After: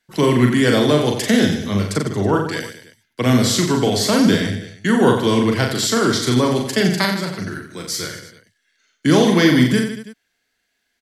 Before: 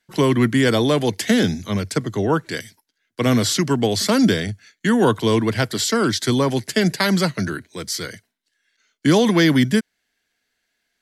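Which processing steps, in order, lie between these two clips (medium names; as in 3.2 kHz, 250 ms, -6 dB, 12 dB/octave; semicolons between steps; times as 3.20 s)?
7.05–7.83 s: compression 2:1, threshold -29 dBFS, peak gain reduction 8.5 dB; on a send: reverse bouncing-ball echo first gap 40 ms, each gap 1.25×, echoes 5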